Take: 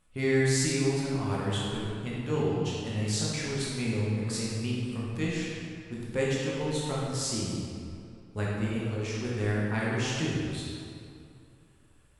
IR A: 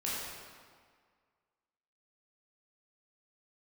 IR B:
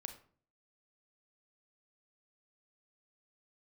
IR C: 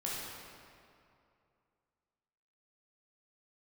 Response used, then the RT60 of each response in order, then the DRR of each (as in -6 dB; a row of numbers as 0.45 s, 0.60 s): C; 1.8 s, 0.50 s, 2.5 s; -8.0 dB, 7.0 dB, -6.5 dB